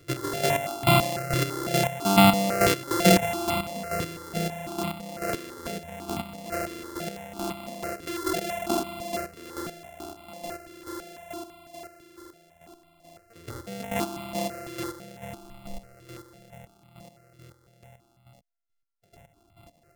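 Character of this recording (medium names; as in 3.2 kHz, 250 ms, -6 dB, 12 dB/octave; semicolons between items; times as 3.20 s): a buzz of ramps at a fixed pitch in blocks of 64 samples; chopped level 2.3 Hz, depth 65%, duty 30%; notches that jump at a steady rate 6 Hz 210–1700 Hz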